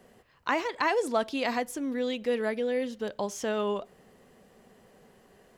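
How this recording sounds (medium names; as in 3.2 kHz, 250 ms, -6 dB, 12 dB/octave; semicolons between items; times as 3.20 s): noise floor -60 dBFS; spectral tilt -2.0 dB/octave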